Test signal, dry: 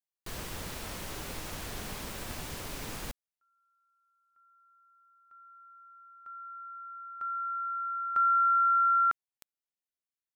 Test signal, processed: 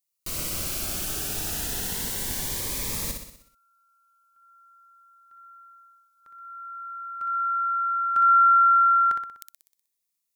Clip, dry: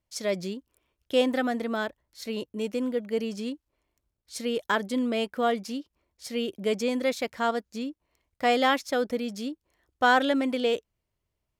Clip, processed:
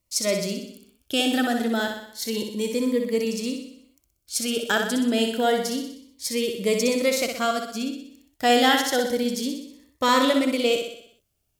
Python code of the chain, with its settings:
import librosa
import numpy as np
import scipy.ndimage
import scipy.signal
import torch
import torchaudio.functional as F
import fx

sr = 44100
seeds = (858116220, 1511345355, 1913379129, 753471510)

y = fx.high_shelf(x, sr, hz=4600.0, db=11.0)
y = fx.echo_feedback(y, sr, ms=62, feedback_pct=55, wet_db=-5.5)
y = fx.notch_cascade(y, sr, direction='rising', hz=0.29)
y = F.gain(torch.from_numpy(y), 4.0).numpy()